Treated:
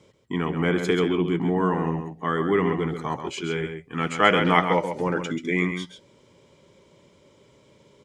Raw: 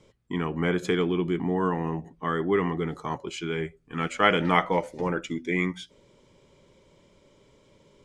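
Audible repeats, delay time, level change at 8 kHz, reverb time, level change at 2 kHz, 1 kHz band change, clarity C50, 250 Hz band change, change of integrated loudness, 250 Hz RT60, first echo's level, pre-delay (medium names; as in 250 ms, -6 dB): 1, 134 ms, +3.0 dB, no reverb, +3.0 dB, +3.0 dB, no reverb, +3.0 dB, +3.0 dB, no reverb, -8.0 dB, no reverb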